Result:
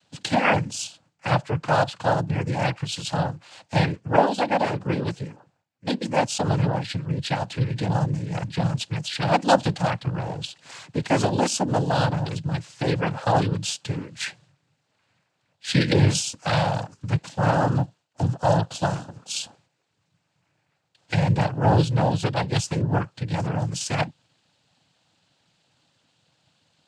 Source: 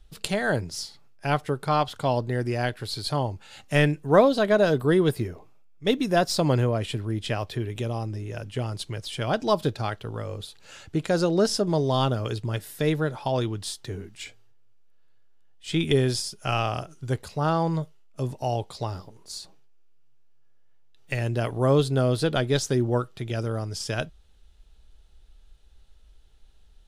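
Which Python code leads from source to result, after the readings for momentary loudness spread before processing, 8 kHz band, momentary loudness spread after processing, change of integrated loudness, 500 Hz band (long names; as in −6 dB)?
13 LU, +4.5 dB, 11 LU, +1.5 dB, −1.5 dB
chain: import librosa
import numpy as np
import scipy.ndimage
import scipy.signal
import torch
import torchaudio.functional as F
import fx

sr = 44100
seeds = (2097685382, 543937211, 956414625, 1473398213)

y = x + 0.53 * np.pad(x, (int(1.3 * sr / 1000.0), 0))[:len(x)]
y = fx.rider(y, sr, range_db=10, speed_s=2.0)
y = fx.noise_vocoder(y, sr, seeds[0], bands=8)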